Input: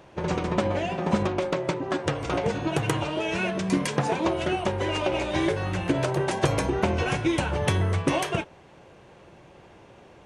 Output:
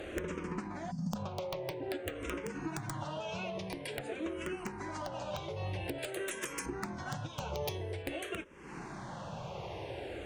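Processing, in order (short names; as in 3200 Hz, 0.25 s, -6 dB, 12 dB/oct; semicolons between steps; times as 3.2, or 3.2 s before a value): 0.91–1.16 spectral gain 270–4400 Hz -25 dB; 5.98–6.66 tilt +3 dB/oct; compressor 16:1, threshold -43 dBFS, peak gain reduction 26 dB; sine folder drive 6 dB, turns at -25 dBFS; 7.4–8.03 fifteen-band EQ 100 Hz -6 dB, 400 Hz +6 dB, 6300 Hz +9 dB; wrapped overs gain 26 dB; 4.34–5.35 notch 3600 Hz, Q 9.9; endless phaser -0.49 Hz; gain +1 dB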